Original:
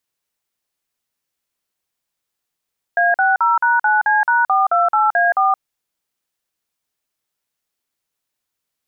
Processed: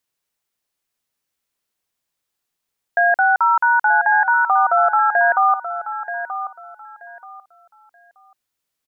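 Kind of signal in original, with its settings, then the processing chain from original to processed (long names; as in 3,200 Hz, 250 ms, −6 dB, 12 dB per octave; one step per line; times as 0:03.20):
touch tones "A60#9C#428A4", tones 172 ms, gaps 46 ms, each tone −14.5 dBFS
repeating echo 930 ms, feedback 23%, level −11 dB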